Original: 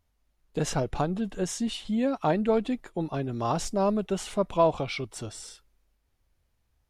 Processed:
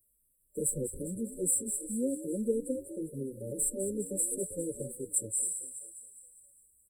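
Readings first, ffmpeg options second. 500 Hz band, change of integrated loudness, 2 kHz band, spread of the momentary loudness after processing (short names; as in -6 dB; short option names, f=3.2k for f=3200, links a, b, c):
-8.0 dB, -4.5 dB, under -40 dB, 13 LU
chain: -filter_complex "[0:a]highshelf=f=9.4k:g=-4,acrossover=split=150|440|5100[a][b][c][d];[d]alimiter=level_in=8dB:limit=-24dB:level=0:latency=1:release=350,volume=-8dB[e];[a][b][c][e]amix=inputs=4:normalize=0,aexciter=amount=4.1:drive=9.3:freq=2.1k,lowshelf=f=280:g=-9,asplit=8[f][g][h][i][j][k][l][m];[g]adelay=202,afreqshift=76,volume=-10.5dB[n];[h]adelay=404,afreqshift=152,volume=-15.2dB[o];[i]adelay=606,afreqshift=228,volume=-20dB[p];[j]adelay=808,afreqshift=304,volume=-24.7dB[q];[k]adelay=1010,afreqshift=380,volume=-29.4dB[r];[l]adelay=1212,afreqshift=456,volume=-34.2dB[s];[m]adelay=1414,afreqshift=532,volume=-38.9dB[t];[f][n][o][p][q][r][s][t]amix=inputs=8:normalize=0,afftfilt=real='re*(1-between(b*sr/4096,590,7600))':imag='im*(1-between(b*sr/4096,590,7600))':win_size=4096:overlap=0.75,asplit=2[u][v];[v]adelay=7,afreqshift=1.7[w];[u][w]amix=inputs=2:normalize=1"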